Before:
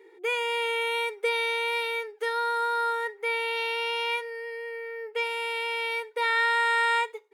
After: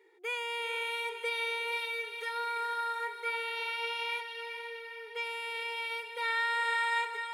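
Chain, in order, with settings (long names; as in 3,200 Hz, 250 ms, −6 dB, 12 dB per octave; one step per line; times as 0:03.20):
low-shelf EQ 430 Hz −10.5 dB
on a send: feedback delay with all-pass diffusion 452 ms, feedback 44%, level −7.5 dB
on the sum: level −6 dB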